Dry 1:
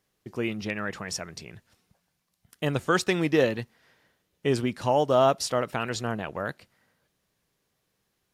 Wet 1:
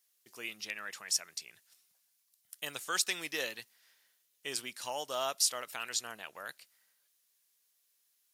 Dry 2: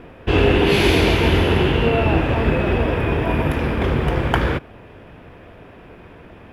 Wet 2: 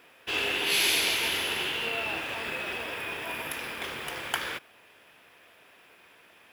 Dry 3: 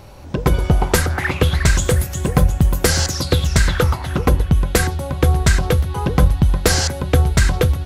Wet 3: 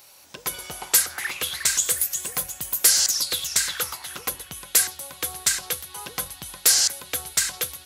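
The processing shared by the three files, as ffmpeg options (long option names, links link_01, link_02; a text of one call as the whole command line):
ffmpeg -i in.wav -af "aderivative,volume=4.5dB" out.wav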